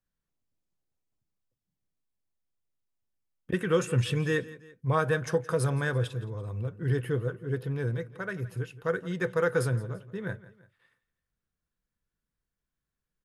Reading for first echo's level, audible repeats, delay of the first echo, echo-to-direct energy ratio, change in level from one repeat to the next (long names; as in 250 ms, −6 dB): −18.5 dB, 2, 169 ms, −17.5 dB, −6.5 dB